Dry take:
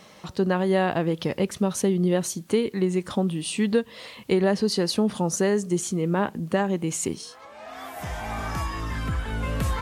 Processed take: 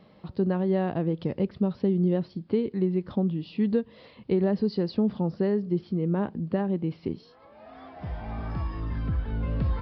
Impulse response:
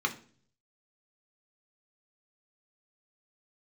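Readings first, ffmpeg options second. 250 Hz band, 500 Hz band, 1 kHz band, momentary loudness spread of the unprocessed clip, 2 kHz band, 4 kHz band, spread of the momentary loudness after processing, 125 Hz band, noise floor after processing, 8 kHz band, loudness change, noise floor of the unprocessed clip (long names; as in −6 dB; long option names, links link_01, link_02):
−1.0 dB, −4.0 dB, −8.5 dB, 12 LU, −12.5 dB, −14.5 dB, 11 LU, −0.5 dB, −55 dBFS, below −40 dB, −2.5 dB, −48 dBFS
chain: -af "aresample=11025,aresample=44100,tiltshelf=frequency=690:gain=7.5,volume=-7dB"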